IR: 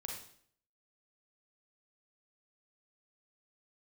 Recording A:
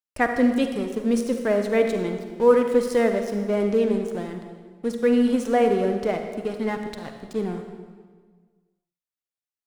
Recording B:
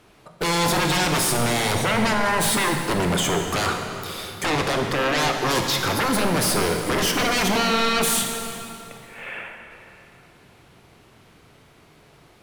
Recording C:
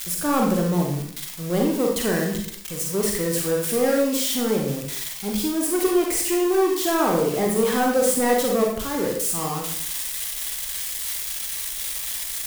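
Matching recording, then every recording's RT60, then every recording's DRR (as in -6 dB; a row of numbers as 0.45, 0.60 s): C; 1.6, 2.9, 0.60 s; 5.5, 3.0, -0.5 dB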